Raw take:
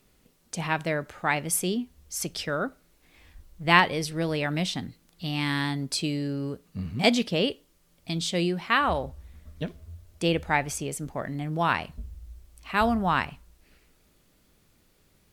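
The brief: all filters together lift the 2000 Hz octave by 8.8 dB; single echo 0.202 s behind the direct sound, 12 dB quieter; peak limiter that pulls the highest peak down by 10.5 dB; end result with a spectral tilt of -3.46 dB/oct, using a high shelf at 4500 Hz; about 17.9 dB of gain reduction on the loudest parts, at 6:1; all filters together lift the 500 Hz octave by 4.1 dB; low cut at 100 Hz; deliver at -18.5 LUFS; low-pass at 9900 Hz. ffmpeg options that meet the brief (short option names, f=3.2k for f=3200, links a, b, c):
-af "highpass=100,lowpass=9.9k,equalizer=f=500:t=o:g=4.5,equalizer=f=2k:t=o:g=9,highshelf=f=4.5k:g=7.5,acompressor=threshold=-25dB:ratio=6,alimiter=limit=-19dB:level=0:latency=1,aecho=1:1:202:0.251,volume=13dB"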